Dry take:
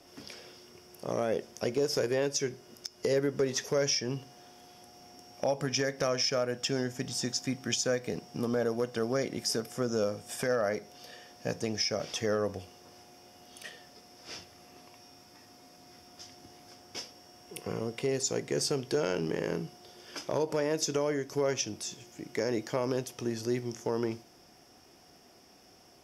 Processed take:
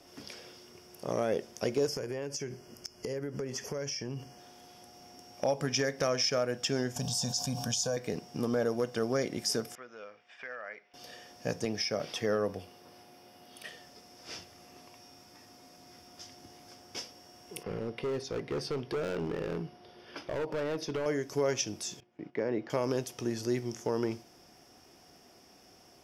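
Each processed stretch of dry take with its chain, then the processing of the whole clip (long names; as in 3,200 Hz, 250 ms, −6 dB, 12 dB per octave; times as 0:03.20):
0:01.87–0:04.39: low-shelf EQ 170 Hz +6.5 dB + downward compressor, threshold −33 dBFS + Butterworth band-reject 3,800 Hz, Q 3.9
0:06.96–0:07.97: Butterworth band-reject 1,300 Hz, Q 5.4 + phaser with its sweep stopped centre 830 Hz, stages 4 + envelope flattener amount 70%
0:09.75–0:10.94: resonant band-pass 2,200 Hz, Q 1.8 + high-frequency loss of the air 210 metres
0:11.65–0:13.69: high-pass filter 96 Hz + parametric band 6,800 Hz −8.5 dB 0.52 octaves
0:17.63–0:21.06: moving average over 6 samples + gain into a clipping stage and back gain 29.5 dB
0:22.00–0:22.70: noise gate −49 dBFS, range −13 dB + high-pass filter 120 Hz + high-frequency loss of the air 370 metres
whole clip: no processing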